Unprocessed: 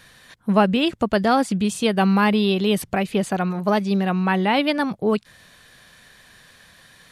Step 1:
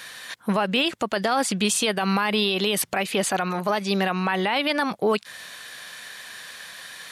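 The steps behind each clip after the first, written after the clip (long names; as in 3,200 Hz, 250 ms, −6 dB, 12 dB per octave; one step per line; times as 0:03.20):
high-pass filter 910 Hz 6 dB per octave
in parallel at −1 dB: downward compressor, threshold −34 dBFS, peak gain reduction 17 dB
on the sum: brickwall limiter −18 dBFS, peak gain reduction 11.5 dB
level +6 dB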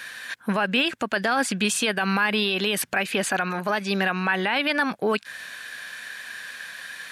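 thirty-one-band graphic EQ 250 Hz +4 dB, 1,600 Hz +10 dB, 2,500 Hz +5 dB
level −2.5 dB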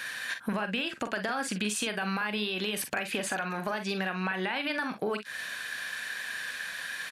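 downward compressor, threshold −29 dBFS, peak gain reduction 11 dB
ambience of single reflections 43 ms −9 dB, 57 ms −15 dB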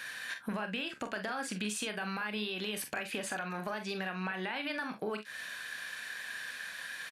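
double-tracking delay 28 ms −12.5 dB
level −5.5 dB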